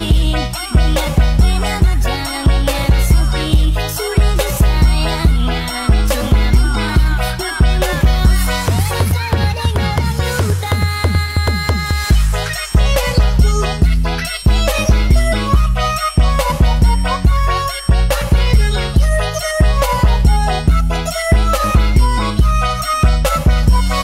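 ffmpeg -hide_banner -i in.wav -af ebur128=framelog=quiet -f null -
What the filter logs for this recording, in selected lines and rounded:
Integrated loudness:
  I:         -15.0 LUFS
  Threshold: -25.0 LUFS
Loudness range:
  LRA:         1.3 LU
  Threshold: -35.1 LUFS
  LRA low:   -15.9 LUFS
  LRA high:  -14.6 LUFS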